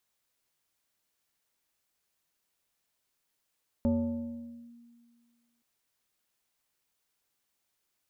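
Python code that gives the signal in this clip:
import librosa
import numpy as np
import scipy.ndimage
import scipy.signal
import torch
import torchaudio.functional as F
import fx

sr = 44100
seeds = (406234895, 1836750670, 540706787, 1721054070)

y = fx.fm2(sr, length_s=1.77, level_db=-22.0, carrier_hz=236.0, ratio=1.37, index=0.78, index_s=0.88, decay_s=1.91, shape='linear')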